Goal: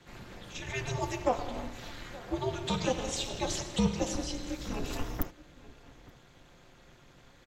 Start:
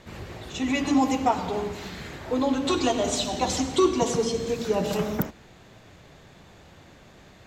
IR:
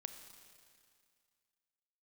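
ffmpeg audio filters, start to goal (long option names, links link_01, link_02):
-filter_complex "[0:a]equalizer=frequency=360:width_type=o:width=0.77:gain=-3,aecho=1:1:5.7:0.92,asplit=2[link_01][link_02];[link_02]adelay=874.6,volume=-19dB,highshelf=frequency=4000:gain=-19.7[link_03];[link_01][link_03]amix=inputs=2:normalize=0,tremolo=f=270:d=0.824,afreqshift=-170,volume=-5dB"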